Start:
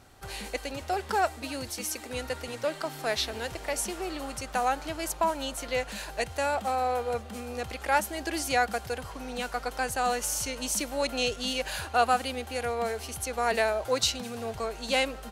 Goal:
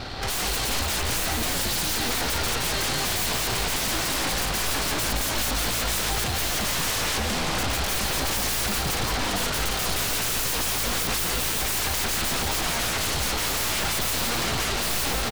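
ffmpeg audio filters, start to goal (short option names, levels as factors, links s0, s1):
-filter_complex "[0:a]highshelf=f=6300:t=q:w=3:g=-14,aeval=exprs='0.0708*sin(PI/2*7.08*val(0)/0.0708)':c=same,aeval=exprs='(tanh(25.1*val(0)+0.5)-tanh(0.5))/25.1':c=same,asplit=8[s0][s1][s2][s3][s4][s5][s6][s7];[s1]adelay=169,afreqshift=-56,volume=0.668[s8];[s2]adelay=338,afreqshift=-112,volume=0.347[s9];[s3]adelay=507,afreqshift=-168,volume=0.18[s10];[s4]adelay=676,afreqshift=-224,volume=0.0944[s11];[s5]adelay=845,afreqshift=-280,volume=0.049[s12];[s6]adelay=1014,afreqshift=-336,volume=0.0254[s13];[s7]adelay=1183,afreqshift=-392,volume=0.0132[s14];[s0][s8][s9][s10][s11][s12][s13][s14]amix=inputs=8:normalize=0,volume=1.33"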